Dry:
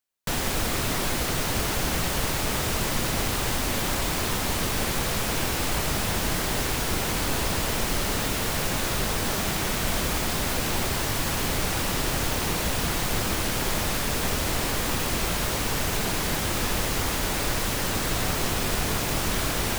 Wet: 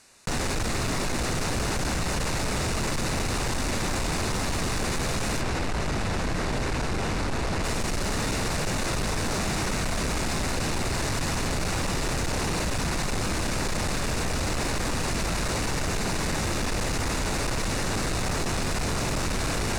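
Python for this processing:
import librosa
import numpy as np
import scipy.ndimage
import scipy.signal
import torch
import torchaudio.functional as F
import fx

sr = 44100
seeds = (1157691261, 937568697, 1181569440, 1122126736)

y = fx.high_shelf(x, sr, hz=5600.0, db=-11.0, at=(5.41, 7.64))
y = scipy.signal.sosfilt(scipy.signal.butter(4, 9400.0, 'lowpass', fs=sr, output='sos'), y)
y = fx.low_shelf(y, sr, hz=390.0, db=3.0)
y = fx.notch(y, sr, hz=3200.0, q=5.3)
y = 10.0 ** (-25.5 / 20.0) * np.tanh(y / 10.0 ** (-25.5 / 20.0))
y = fx.env_flatten(y, sr, amount_pct=50)
y = y * librosa.db_to_amplitude(1.5)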